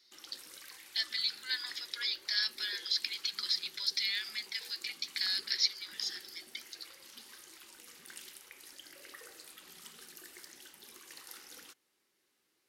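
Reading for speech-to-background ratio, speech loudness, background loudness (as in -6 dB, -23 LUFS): 17.0 dB, -33.5 LUFS, -50.5 LUFS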